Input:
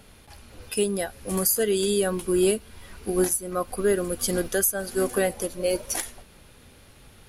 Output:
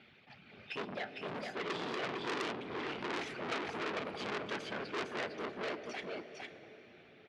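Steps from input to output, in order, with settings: Doppler pass-by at 3.12, 6 m/s, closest 3.6 m; reverb removal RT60 0.7 s; in parallel at +1 dB: compressor, threshold -42 dBFS, peak gain reduction 21.5 dB; on the sum: overloaded stage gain 28.5 dB; whisperiser; speaker cabinet 200–3600 Hz, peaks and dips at 310 Hz -6 dB, 530 Hz -8 dB, 1000 Hz -9 dB, 2300 Hz +6 dB; on a send: echo 0.456 s -4.5 dB; on the sum: plate-style reverb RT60 4.7 s, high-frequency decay 0.6×, DRR 11.5 dB; core saturation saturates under 3600 Hz; gain +3 dB

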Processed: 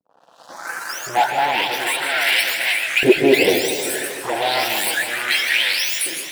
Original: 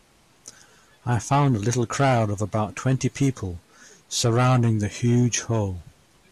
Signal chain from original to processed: spectral delay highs late, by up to 0.671 s; notch 440 Hz, Q 12; reverse; compressor 8:1, threshold -30 dBFS, peak gain reduction 14.5 dB; reverse; sample leveller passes 5; AGC gain up to 16 dB; LFO high-pass saw up 0.33 Hz 360–2400 Hz; envelope phaser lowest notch 360 Hz, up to 1200 Hz, full sweep at -10.5 dBFS; on a send at -11 dB: reverb, pre-delay 0.122 s; on the sum: warbling echo 0.155 s, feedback 70%, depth 182 cents, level -9.5 dB; gain -4.5 dB

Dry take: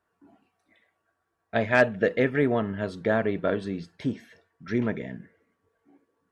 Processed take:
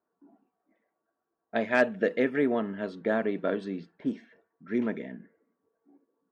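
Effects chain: low-pass opened by the level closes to 1000 Hz, open at -21.5 dBFS; resonant low shelf 150 Hz -13.5 dB, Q 1.5; gain -4 dB

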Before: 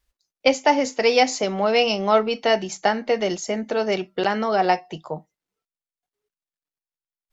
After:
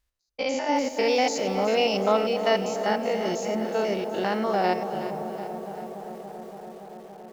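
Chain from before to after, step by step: stepped spectrum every 0.1 s; dark delay 0.284 s, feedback 84%, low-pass 880 Hz, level -10 dB; lo-fi delay 0.37 s, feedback 55%, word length 7-bit, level -11.5 dB; gain -2.5 dB

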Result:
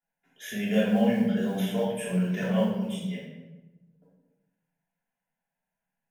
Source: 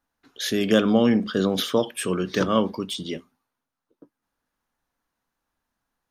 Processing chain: resonant low shelf 120 Hz -12 dB, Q 3; fixed phaser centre 1200 Hz, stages 6; modulation noise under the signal 31 dB; shoebox room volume 500 m³, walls mixed, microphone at 3.2 m; flange 0.52 Hz, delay 6 ms, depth 4.5 ms, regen -56%; gain -7.5 dB

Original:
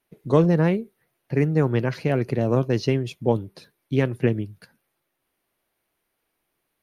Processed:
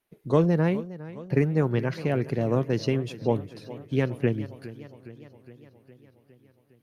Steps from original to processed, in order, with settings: 0.78–1.42 transient shaper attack +4 dB, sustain -10 dB; warbling echo 0.411 s, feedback 63%, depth 79 cents, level -16.5 dB; gain -3.5 dB

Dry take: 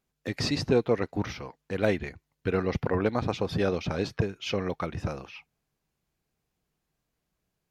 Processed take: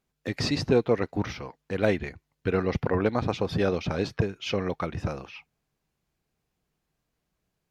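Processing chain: high shelf 7500 Hz -4 dB; gain +1.5 dB

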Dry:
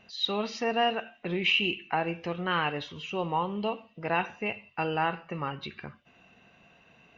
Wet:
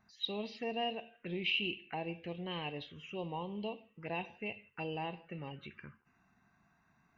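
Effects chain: band-limited delay 0.162 s, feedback 34%, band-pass 830 Hz, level -24 dB; envelope phaser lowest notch 490 Hz, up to 1400 Hz, full sweep at -28.5 dBFS; gain -7.5 dB

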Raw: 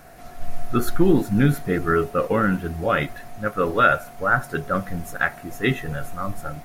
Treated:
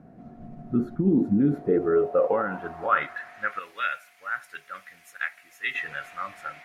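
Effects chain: 3.59–5.75 pre-emphasis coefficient 0.8; limiter -15.5 dBFS, peak gain reduction 11.5 dB; band-pass sweep 210 Hz -> 2200 Hz, 1.02–3.6; gain +8 dB

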